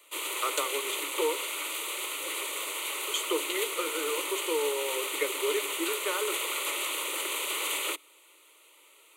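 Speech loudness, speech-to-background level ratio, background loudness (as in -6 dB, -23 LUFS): -33.5 LUFS, -2.5 dB, -31.0 LUFS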